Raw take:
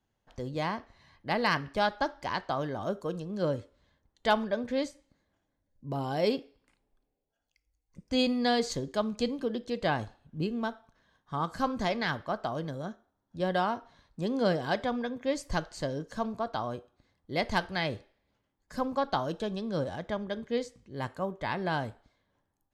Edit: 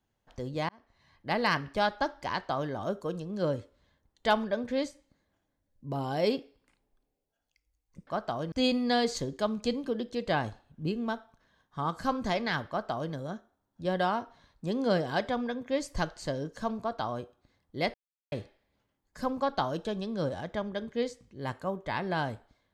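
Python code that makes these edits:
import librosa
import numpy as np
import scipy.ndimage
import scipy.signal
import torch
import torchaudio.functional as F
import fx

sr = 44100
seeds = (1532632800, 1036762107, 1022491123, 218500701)

y = fx.edit(x, sr, fx.fade_in_span(start_s=0.69, length_s=0.63),
    fx.duplicate(start_s=12.23, length_s=0.45, to_s=8.07),
    fx.silence(start_s=17.49, length_s=0.38), tone=tone)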